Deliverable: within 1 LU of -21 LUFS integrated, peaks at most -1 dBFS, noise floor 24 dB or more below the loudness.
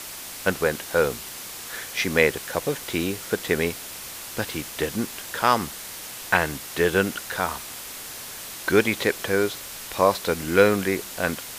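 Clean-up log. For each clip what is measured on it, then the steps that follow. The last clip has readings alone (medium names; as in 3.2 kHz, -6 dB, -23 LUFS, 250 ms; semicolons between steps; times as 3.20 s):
noise floor -37 dBFS; noise floor target -49 dBFS; loudness -25.0 LUFS; peak level -2.5 dBFS; loudness target -21.0 LUFS
-> noise reduction 12 dB, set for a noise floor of -37 dBFS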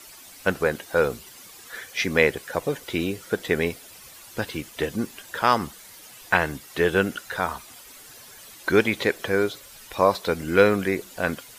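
noise floor -46 dBFS; noise floor target -49 dBFS
-> noise reduction 6 dB, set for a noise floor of -46 dBFS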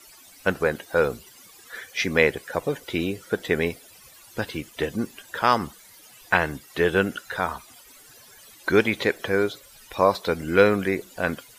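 noise floor -50 dBFS; loudness -24.5 LUFS; peak level -2.5 dBFS; loudness target -21.0 LUFS
-> trim +3.5 dB; peak limiter -1 dBFS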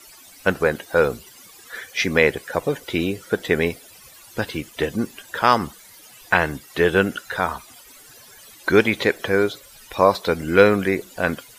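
loudness -21.0 LUFS; peak level -1.0 dBFS; noise floor -47 dBFS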